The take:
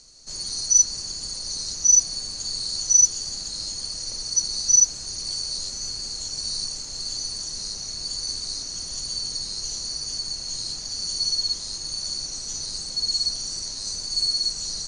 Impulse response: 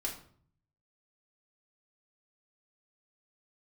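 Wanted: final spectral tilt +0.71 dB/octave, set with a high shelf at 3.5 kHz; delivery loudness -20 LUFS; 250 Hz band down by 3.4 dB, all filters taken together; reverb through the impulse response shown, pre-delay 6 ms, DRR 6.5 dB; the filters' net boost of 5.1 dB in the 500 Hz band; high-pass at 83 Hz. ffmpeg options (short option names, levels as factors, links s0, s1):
-filter_complex "[0:a]highpass=83,equalizer=f=250:t=o:g=-7.5,equalizer=f=500:t=o:g=8.5,highshelf=f=3500:g=-6.5,asplit=2[s0][s1];[1:a]atrim=start_sample=2205,adelay=6[s2];[s1][s2]afir=irnorm=-1:irlink=0,volume=0.398[s3];[s0][s3]amix=inputs=2:normalize=0,volume=2.37"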